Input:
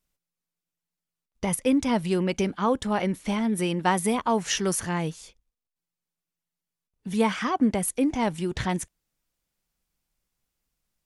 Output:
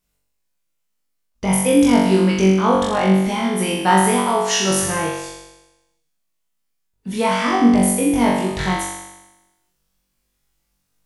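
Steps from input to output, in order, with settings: 4.01–4.71 s: high-pass 280 Hz 6 dB/octave; on a send: flutter echo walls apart 3.6 m, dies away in 1 s; on the sum: trim +3 dB

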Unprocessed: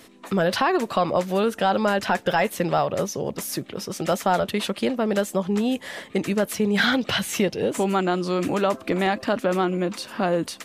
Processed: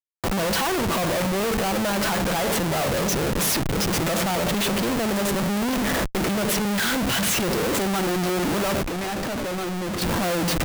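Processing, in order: simulated room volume 2000 m³, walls furnished, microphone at 0.71 m; Schmitt trigger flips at -35 dBFS; treble shelf 10 kHz +4 dB; 8.82–10.02 s: hard clipper -27.5 dBFS, distortion -17 dB

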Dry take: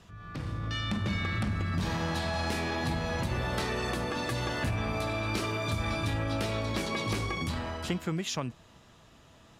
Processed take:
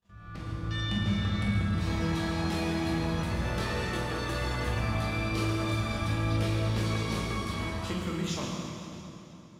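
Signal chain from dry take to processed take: gate -54 dBFS, range -27 dB; reverberation RT60 3.2 s, pre-delay 7 ms, DRR -4.5 dB; trim -6 dB

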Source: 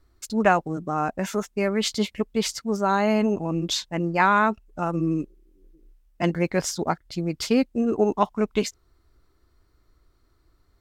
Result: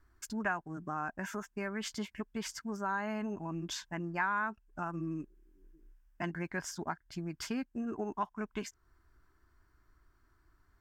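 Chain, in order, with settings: graphic EQ with 31 bands 500 Hz -11 dB, 1 kHz +6 dB, 1.6 kHz +12 dB, 4 kHz -9 dB, 10 kHz -3 dB; compression 2:1, threshold -35 dBFS, peak gain reduction 14 dB; trim -5.5 dB

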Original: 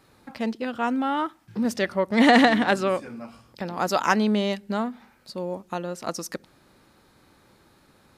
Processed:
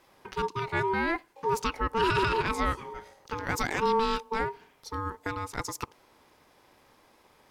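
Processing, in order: peak limiter -15 dBFS, peak gain reduction 10 dB; ring modulator 620 Hz; speed mistake 44.1 kHz file played as 48 kHz

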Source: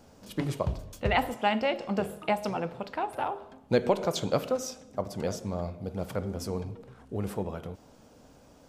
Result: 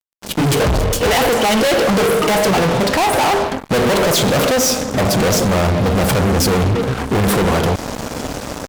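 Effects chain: level rider gain up to 12.5 dB; 0.54–2.51 s: small resonant body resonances 460/3000 Hz, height 13 dB, ringing for 55 ms; fuzz box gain 38 dB, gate -44 dBFS

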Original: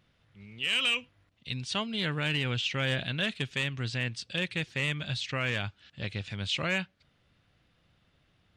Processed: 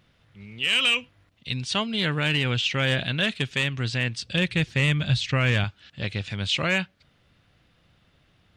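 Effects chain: 4.23–5.64 s: bass shelf 150 Hz +11.5 dB; trim +6 dB

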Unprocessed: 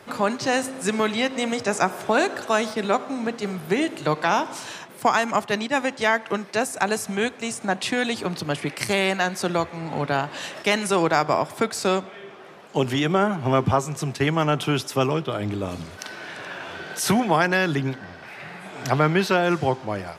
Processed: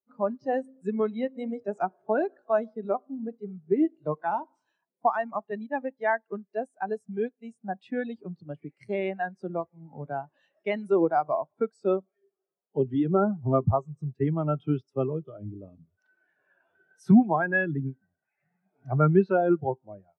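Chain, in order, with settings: spectral contrast expander 2.5:1; trim -3 dB

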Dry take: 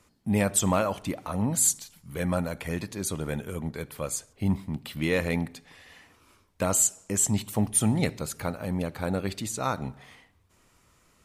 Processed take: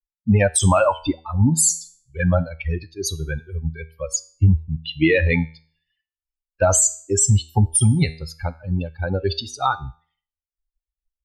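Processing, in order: expander on every frequency bin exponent 3; low-pass 9 kHz 24 dB/octave; resonant low shelf 130 Hz +7 dB, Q 1.5; compression, threshold -29 dBFS, peak gain reduction 10.5 dB; feedback comb 80 Hz, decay 0.44 s, harmonics all, mix 50%; loudness maximiser +31 dB; trim -6.5 dB

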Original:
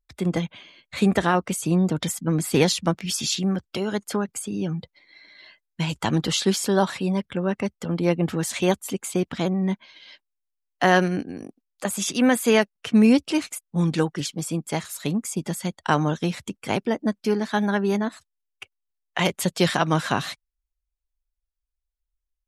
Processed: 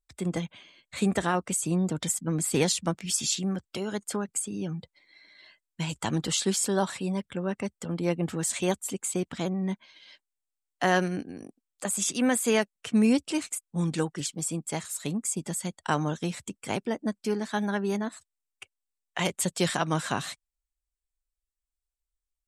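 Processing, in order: peaking EQ 8.1 kHz +11 dB 0.5 oct; trim -6 dB

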